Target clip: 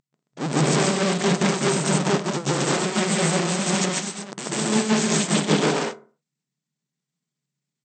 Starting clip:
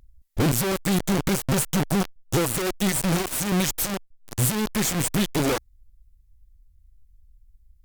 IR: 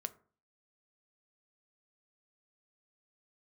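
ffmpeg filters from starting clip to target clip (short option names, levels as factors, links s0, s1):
-filter_complex "[0:a]aecho=1:1:128.3|192.4|227.4:0.562|0.447|0.282,aeval=exprs='0.355*(cos(1*acos(clip(val(0)/0.355,-1,1)))-cos(1*PI/2))+0.112*(cos(8*acos(clip(val(0)/0.355,-1,1)))-cos(8*PI/2))':c=same,asplit=2[s0][s1];[1:a]atrim=start_sample=2205,afade=t=out:st=0.34:d=0.01,atrim=end_sample=15435,adelay=142[s2];[s1][s2]afir=irnorm=-1:irlink=0,volume=2.11[s3];[s0][s3]amix=inputs=2:normalize=0,afftfilt=real='re*between(b*sr/4096,130,8500)':imag='im*between(b*sr/4096,130,8500)':win_size=4096:overlap=0.75,volume=0.501"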